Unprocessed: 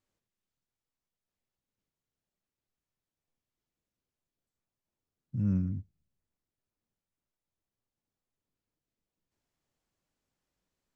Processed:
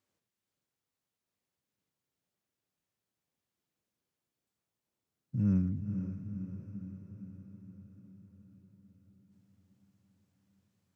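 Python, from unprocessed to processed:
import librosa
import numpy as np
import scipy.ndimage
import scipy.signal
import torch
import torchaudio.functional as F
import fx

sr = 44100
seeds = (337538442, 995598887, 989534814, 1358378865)

y = scipy.signal.sosfilt(scipy.signal.butter(2, 92.0, 'highpass', fs=sr, output='sos'), x)
y = fx.echo_diffused(y, sr, ms=497, feedback_pct=63, wet_db=-8)
y = y * 10.0 ** (1.5 / 20.0)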